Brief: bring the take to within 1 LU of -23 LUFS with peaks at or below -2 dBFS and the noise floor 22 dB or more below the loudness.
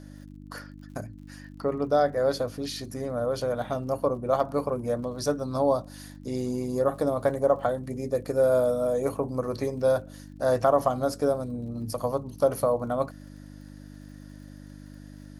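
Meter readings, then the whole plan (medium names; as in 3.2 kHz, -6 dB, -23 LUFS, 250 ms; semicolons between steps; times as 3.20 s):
tick rate 55 per s; hum 50 Hz; highest harmonic 300 Hz; hum level -42 dBFS; loudness -27.0 LUFS; peak level -10.0 dBFS; loudness target -23.0 LUFS
-> de-click; de-hum 50 Hz, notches 6; trim +4 dB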